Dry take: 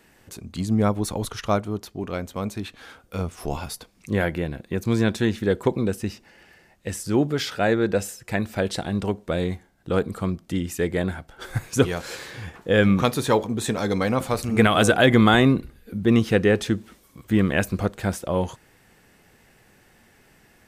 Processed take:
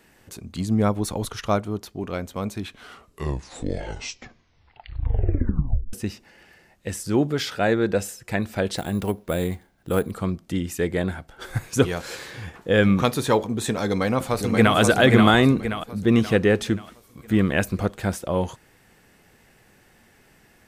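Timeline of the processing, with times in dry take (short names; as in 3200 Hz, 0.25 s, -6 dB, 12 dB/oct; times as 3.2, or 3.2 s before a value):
2.55 tape stop 3.38 s
8.77–10.12 careless resampling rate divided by 4×, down none, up hold
13.87–14.77 echo throw 0.53 s, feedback 45%, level -3.5 dB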